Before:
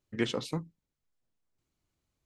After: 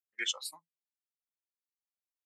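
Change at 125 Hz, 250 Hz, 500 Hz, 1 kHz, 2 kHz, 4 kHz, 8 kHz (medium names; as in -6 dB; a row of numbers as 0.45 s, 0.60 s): under -40 dB, -25.0 dB, -20.0 dB, -9.0 dB, +1.5 dB, +4.5 dB, +8.5 dB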